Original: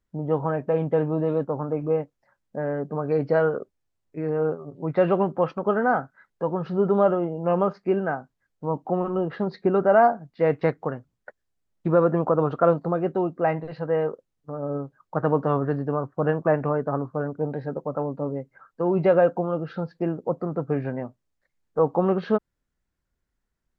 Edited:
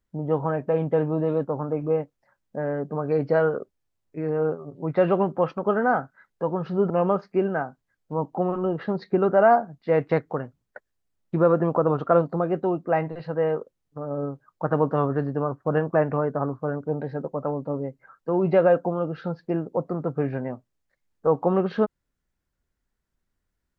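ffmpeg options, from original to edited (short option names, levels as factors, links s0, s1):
-filter_complex "[0:a]asplit=2[s0][s1];[s0]atrim=end=6.902[s2];[s1]atrim=start=7.418[s3];[s2][s3]acrossfade=d=0.004:c1=hsin:c2=hsin"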